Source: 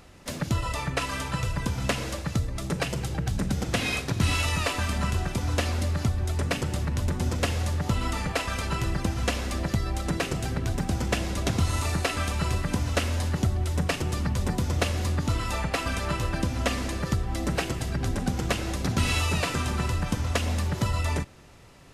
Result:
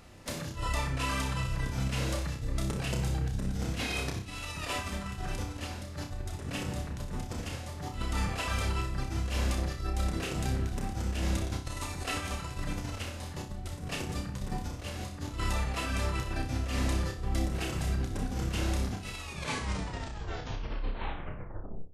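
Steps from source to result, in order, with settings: tape stop at the end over 2.80 s; negative-ratio compressor -29 dBFS, ratio -0.5; flutter echo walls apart 5.3 m, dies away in 0.37 s; gain -6 dB

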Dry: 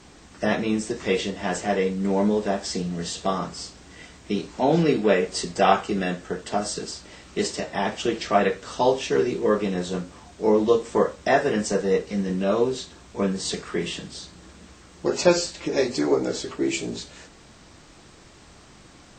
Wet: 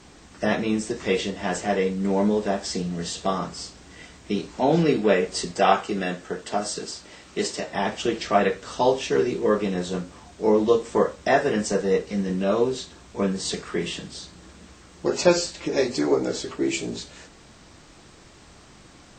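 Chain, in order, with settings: 5.51–7.71 low shelf 140 Hz -7.5 dB

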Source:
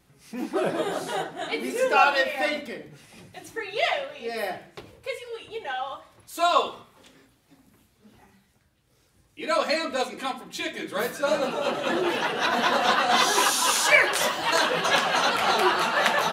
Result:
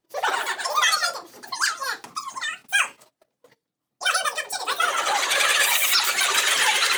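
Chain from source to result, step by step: gate -53 dBFS, range -21 dB; speed mistake 33 rpm record played at 78 rpm; maximiser +10.5 dB; gain -7.5 dB

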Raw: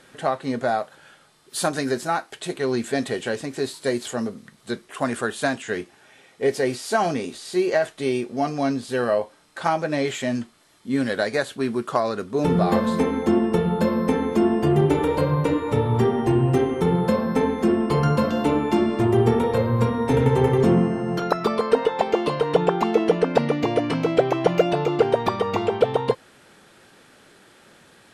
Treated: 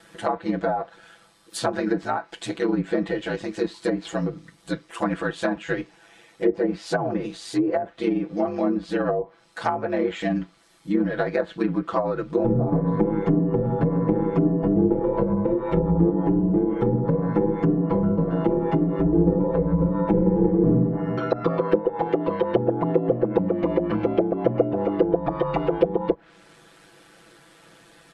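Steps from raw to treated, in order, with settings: ring modulator 52 Hz; treble ducked by the level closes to 510 Hz, closed at -18.5 dBFS; comb 6 ms, depth 98%

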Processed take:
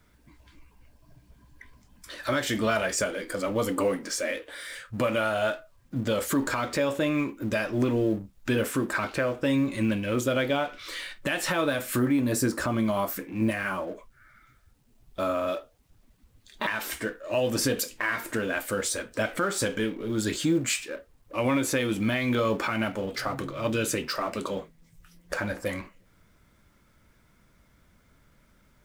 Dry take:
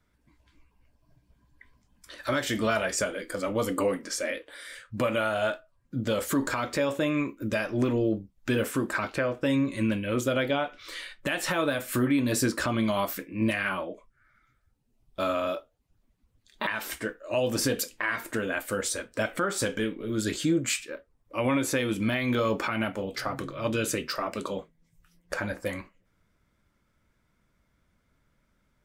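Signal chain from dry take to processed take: G.711 law mismatch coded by mu; 11.99–15.48 dynamic EQ 3300 Hz, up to -7 dB, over -45 dBFS, Q 0.9

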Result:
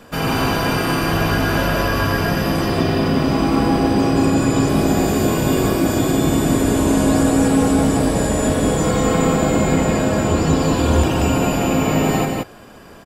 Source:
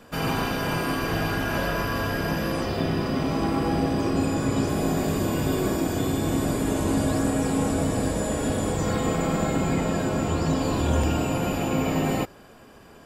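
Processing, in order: echo 0.181 s -3 dB; gain +6 dB

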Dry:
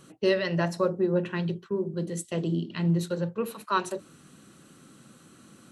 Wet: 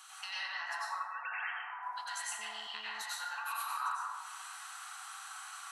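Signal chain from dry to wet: 0.96–1.83 sine-wave speech; Chebyshev high-pass 740 Hz, order 8; compressor 12:1, threshold -47 dBFS, peak gain reduction 26 dB; reverb RT60 1.8 s, pre-delay 82 ms, DRR -9 dB; 2.39–3.02 GSM buzz -65 dBFS; gain +4.5 dB

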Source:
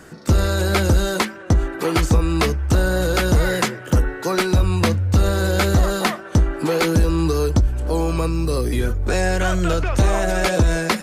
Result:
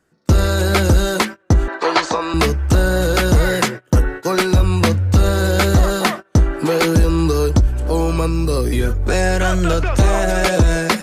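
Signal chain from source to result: gate -28 dBFS, range -25 dB; 1.68–2.34 speaker cabinet 400–6800 Hz, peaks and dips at 640 Hz +7 dB, 990 Hz +10 dB, 1700 Hz +6 dB, 4100 Hz +7 dB; gain +3 dB

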